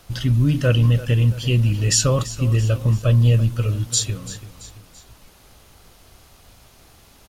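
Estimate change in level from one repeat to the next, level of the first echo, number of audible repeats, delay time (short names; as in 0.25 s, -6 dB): -6.0 dB, -15.5 dB, 3, 0.336 s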